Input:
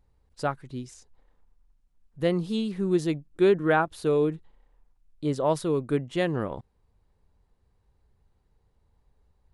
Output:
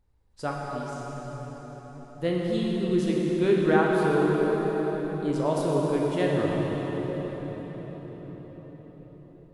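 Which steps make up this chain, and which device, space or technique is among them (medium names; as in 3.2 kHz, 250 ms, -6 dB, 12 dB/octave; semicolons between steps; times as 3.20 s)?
cathedral (reverberation RT60 5.9 s, pre-delay 11 ms, DRR -3.5 dB); trim -4 dB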